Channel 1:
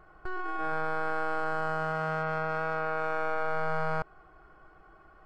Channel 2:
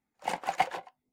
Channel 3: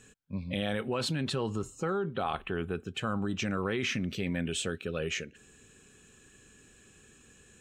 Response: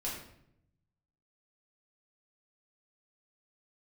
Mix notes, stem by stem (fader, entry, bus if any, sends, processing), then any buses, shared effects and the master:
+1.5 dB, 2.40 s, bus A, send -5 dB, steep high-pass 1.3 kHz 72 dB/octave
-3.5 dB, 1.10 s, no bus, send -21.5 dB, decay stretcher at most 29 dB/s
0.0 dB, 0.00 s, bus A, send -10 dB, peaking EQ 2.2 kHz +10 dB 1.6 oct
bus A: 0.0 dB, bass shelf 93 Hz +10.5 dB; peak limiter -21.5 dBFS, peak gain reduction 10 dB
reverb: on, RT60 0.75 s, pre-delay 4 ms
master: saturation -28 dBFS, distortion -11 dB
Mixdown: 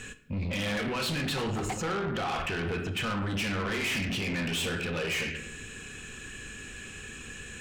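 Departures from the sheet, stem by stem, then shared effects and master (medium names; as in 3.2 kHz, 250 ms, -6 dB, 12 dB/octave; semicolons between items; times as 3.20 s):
stem 1: muted; stem 2: missing decay stretcher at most 29 dB/s; stem 3 0.0 dB -> +9.0 dB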